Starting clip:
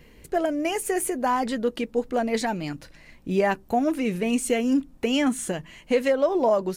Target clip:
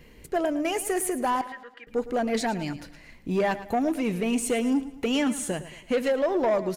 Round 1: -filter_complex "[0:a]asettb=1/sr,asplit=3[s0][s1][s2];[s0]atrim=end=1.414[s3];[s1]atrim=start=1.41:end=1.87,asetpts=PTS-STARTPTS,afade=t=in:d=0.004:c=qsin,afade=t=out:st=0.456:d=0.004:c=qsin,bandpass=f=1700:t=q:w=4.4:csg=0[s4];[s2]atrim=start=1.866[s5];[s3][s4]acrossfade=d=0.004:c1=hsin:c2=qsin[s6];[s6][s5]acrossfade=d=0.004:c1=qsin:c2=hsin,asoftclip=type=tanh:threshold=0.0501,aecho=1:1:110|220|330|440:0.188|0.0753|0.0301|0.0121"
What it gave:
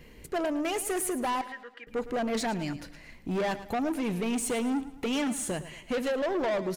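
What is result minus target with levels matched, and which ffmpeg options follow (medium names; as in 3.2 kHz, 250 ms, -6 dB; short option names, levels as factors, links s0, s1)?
saturation: distortion +8 dB
-filter_complex "[0:a]asettb=1/sr,asplit=3[s0][s1][s2];[s0]atrim=end=1.414[s3];[s1]atrim=start=1.41:end=1.87,asetpts=PTS-STARTPTS,afade=t=in:d=0.004:c=qsin,afade=t=out:st=0.456:d=0.004:c=qsin,bandpass=f=1700:t=q:w=4.4:csg=0[s4];[s2]atrim=start=1.866[s5];[s3][s4]acrossfade=d=0.004:c1=hsin:c2=qsin[s6];[s6][s5]acrossfade=d=0.004:c1=qsin:c2=hsin,asoftclip=type=tanh:threshold=0.126,aecho=1:1:110|220|330|440:0.188|0.0753|0.0301|0.0121"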